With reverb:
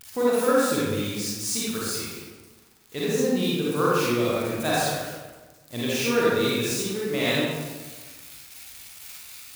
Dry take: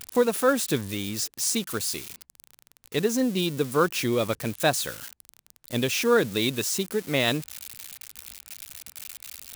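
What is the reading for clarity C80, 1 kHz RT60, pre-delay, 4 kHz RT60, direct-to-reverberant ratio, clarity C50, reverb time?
-1.0 dB, 1.3 s, 36 ms, 0.85 s, -8.0 dB, -5.0 dB, 1.3 s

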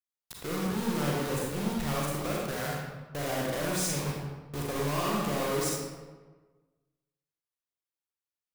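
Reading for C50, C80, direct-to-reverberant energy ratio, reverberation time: -1.0 dB, 2.0 dB, -4.0 dB, 1.4 s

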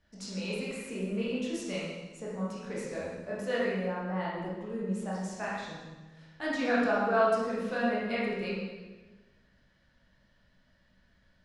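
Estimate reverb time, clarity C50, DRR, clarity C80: 1.3 s, -1.0 dB, -7.5 dB, 1.5 dB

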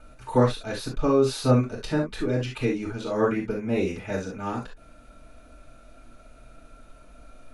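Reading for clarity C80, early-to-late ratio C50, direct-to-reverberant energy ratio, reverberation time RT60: 37.5 dB, 7.5 dB, -3.5 dB, no single decay rate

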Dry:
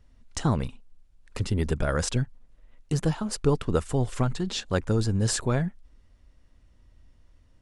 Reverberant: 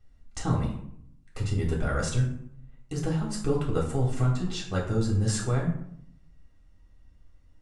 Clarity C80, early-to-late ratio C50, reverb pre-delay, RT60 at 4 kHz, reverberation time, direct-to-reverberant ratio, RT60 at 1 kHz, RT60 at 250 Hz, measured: 9.5 dB, 6.5 dB, 3 ms, 0.40 s, 0.70 s, -3.5 dB, 0.65 s, 0.95 s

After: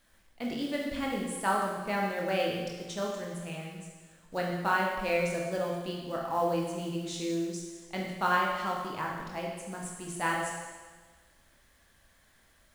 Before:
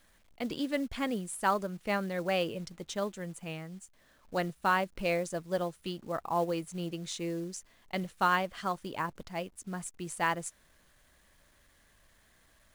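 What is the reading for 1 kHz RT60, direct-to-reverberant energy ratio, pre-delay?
1.4 s, -2.5 dB, 18 ms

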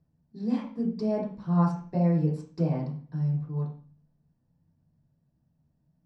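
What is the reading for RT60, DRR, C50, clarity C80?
0.45 s, -7.0 dB, 5.5 dB, 10.0 dB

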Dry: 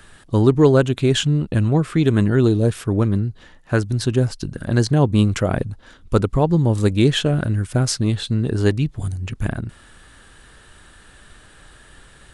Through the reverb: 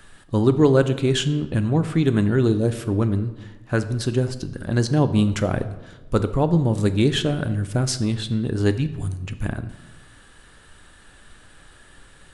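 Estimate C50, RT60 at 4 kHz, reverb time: 13.0 dB, 0.75 s, 1.2 s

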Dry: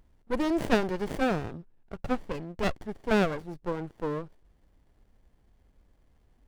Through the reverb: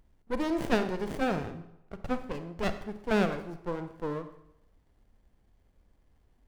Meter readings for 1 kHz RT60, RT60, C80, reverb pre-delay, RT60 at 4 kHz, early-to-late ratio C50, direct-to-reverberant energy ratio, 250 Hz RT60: 0.85 s, 0.85 s, 13.5 dB, 34 ms, 0.65 s, 11.0 dB, 9.5 dB, 0.75 s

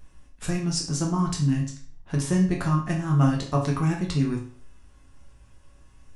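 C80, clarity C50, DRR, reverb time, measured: 11.5 dB, 7.0 dB, -1.5 dB, 0.45 s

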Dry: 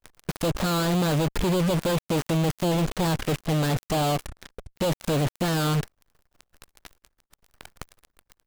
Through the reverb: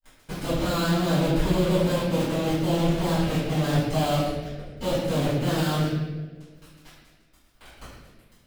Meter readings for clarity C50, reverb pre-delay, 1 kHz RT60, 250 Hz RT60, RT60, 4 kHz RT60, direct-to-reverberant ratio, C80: -1.0 dB, 4 ms, 1.1 s, 2.0 s, 1.4 s, 1.0 s, -16.5 dB, 1.5 dB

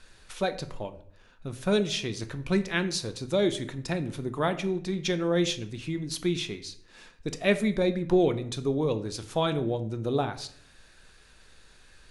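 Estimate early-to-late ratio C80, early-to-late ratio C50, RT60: 17.5 dB, 14.0 dB, 0.60 s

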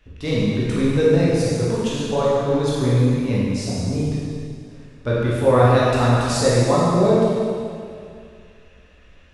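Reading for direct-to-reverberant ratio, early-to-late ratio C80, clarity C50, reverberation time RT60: -8.0 dB, -1.5 dB, -3.5 dB, 2.4 s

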